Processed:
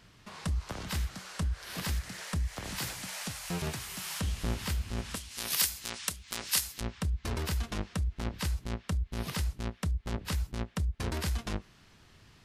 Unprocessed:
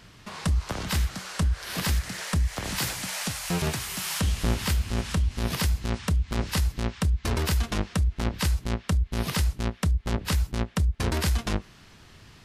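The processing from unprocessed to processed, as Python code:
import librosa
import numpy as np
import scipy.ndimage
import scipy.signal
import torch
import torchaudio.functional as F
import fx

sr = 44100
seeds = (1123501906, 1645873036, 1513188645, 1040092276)

y = fx.tilt_eq(x, sr, slope=4.5, at=(5.15, 6.81))
y = F.gain(torch.from_numpy(y), -7.5).numpy()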